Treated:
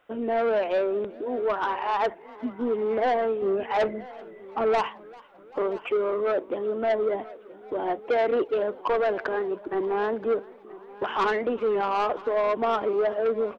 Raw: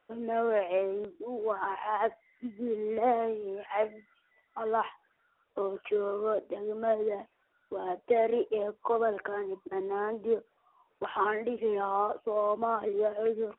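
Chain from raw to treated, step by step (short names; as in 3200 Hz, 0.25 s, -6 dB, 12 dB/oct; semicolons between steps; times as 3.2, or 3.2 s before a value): 3.42–4.81 low shelf 500 Hz +11 dB; soft clip -27 dBFS, distortion -11 dB; on a send: echo 0.976 s -19.5 dB; on the sum: warbling echo 0.39 s, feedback 62%, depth 138 cents, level -23.5 dB; gain +8 dB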